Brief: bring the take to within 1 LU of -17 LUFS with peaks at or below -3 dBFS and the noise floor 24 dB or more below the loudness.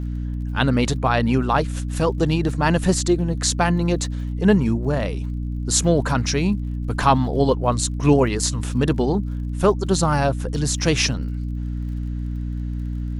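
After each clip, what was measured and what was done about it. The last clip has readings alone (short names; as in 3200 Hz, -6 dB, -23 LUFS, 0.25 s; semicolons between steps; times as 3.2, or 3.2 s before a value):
ticks 38/s; hum 60 Hz; harmonics up to 300 Hz; hum level -23 dBFS; loudness -21.0 LUFS; peak -3.5 dBFS; loudness target -17.0 LUFS
-> de-click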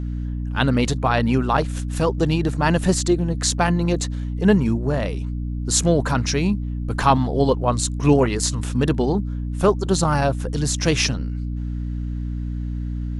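ticks 0/s; hum 60 Hz; harmonics up to 300 Hz; hum level -23 dBFS
-> de-hum 60 Hz, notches 5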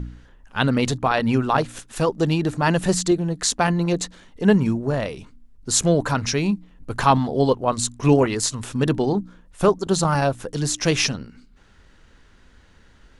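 hum none; loudness -21.5 LUFS; peak -3.0 dBFS; loudness target -17.0 LUFS
-> gain +4.5 dB; limiter -3 dBFS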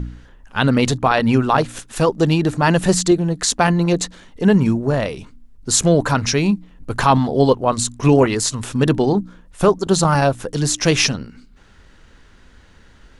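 loudness -17.5 LUFS; peak -3.0 dBFS; noise floor -48 dBFS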